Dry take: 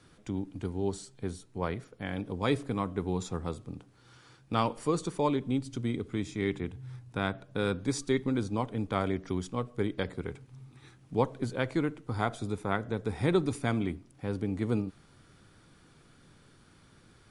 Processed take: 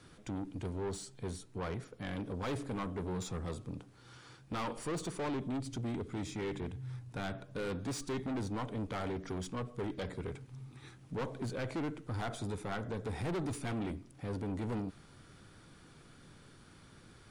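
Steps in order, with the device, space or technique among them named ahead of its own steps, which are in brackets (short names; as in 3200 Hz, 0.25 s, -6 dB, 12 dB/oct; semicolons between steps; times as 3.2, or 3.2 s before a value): saturation between pre-emphasis and de-emphasis (high shelf 6600 Hz +11.5 dB; soft clip -35 dBFS, distortion -4 dB; high shelf 6600 Hz -11.5 dB); gain +1.5 dB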